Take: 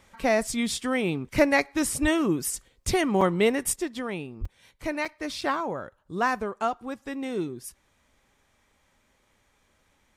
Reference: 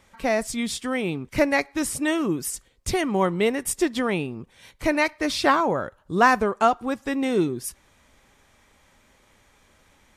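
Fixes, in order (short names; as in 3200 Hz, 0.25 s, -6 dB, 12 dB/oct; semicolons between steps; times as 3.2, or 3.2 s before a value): 2.01–2.13 HPF 140 Hz 24 dB/oct; 4.4–4.52 HPF 140 Hz 24 dB/oct; interpolate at 3.21/4.45/5.05/5.41, 4.5 ms; 3.76 gain correction +8 dB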